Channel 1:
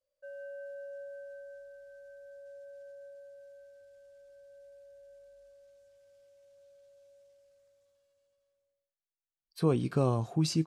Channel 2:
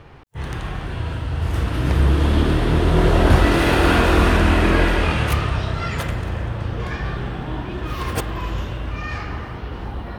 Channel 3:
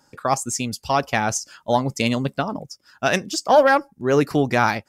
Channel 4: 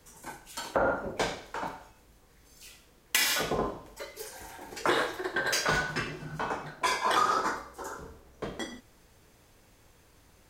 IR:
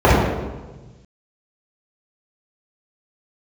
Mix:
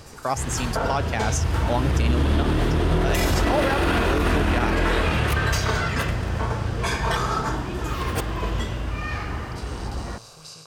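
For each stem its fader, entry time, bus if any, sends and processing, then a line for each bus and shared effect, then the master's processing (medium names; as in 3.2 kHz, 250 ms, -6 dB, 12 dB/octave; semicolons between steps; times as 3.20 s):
-8.0 dB, 0.00 s, no send, spectral levelling over time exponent 0.2; amplifier tone stack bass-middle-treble 10-0-10
-1.0 dB, 0.00 s, no send, none
-4.0 dB, 0.00 s, no send, none
0.0 dB, 0.00 s, no send, comb 4.5 ms, depth 79%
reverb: none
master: peak limiter -12 dBFS, peak gain reduction 10.5 dB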